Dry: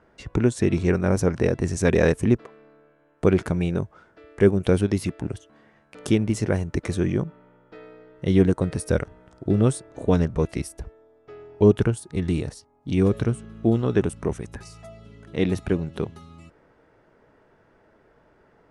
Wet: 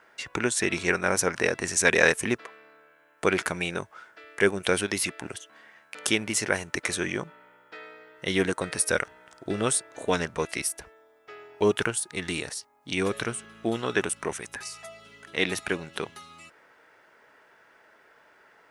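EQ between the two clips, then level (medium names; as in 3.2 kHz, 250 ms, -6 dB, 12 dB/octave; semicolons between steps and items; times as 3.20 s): RIAA curve recording; peaking EQ 1.8 kHz +10 dB 2.4 oct; band-stop 1.2 kHz, Q 25; -3.5 dB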